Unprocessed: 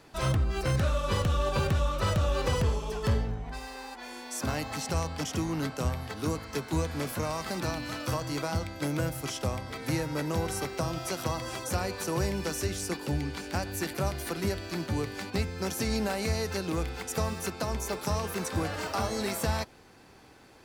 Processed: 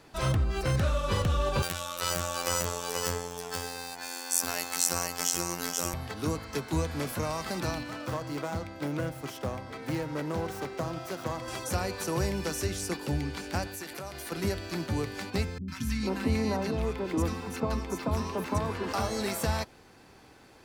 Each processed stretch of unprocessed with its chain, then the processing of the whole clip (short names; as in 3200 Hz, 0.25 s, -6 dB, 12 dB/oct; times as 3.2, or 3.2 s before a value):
1.62–5.94 RIAA curve recording + robotiser 87 Hz + echo 0.483 s -3.5 dB
7.83–11.48 self-modulated delay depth 0.13 ms + HPF 140 Hz 6 dB/oct + high shelf 2600 Hz -8 dB
13.67–14.32 low shelf 260 Hz -10 dB + compressor 4:1, threshold -36 dBFS
15.58–18.93 tone controls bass +1 dB, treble -8 dB + small resonant body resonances 260/1000 Hz, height 11 dB + three bands offset in time lows, highs, mids 0.1/0.45 s, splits 200/1300 Hz
whole clip: dry